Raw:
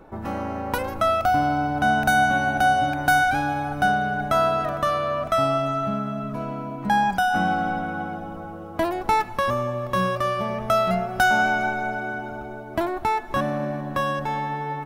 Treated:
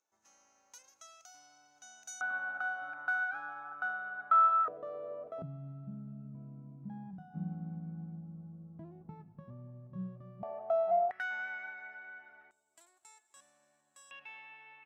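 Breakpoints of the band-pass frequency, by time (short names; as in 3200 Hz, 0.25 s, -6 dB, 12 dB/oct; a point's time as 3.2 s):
band-pass, Q 13
6400 Hz
from 2.21 s 1300 Hz
from 4.68 s 470 Hz
from 5.42 s 160 Hz
from 10.43 s 710 Hz
from 11.11 s 1900 Hz
from 12.51 s 7700 Hz
from 14.11 s 2600 Hz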